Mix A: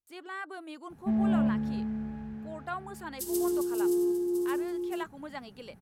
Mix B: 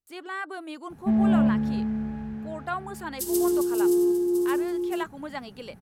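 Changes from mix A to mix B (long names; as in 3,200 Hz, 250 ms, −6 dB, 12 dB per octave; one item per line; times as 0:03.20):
speech +5.5 dB
background +5.5 dB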